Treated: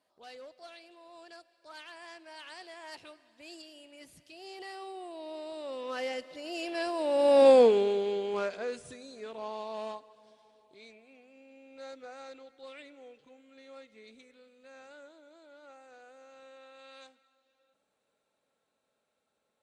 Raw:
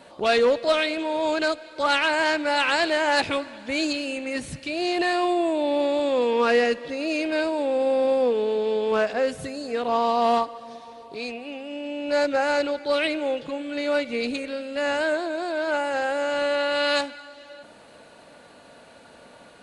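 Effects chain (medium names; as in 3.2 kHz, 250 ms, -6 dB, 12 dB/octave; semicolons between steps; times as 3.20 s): Doppler pass-by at 7.51 s, 27 m/s, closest 4.7 m; tone controls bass -4 dB, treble +5 dB; trim +4 dB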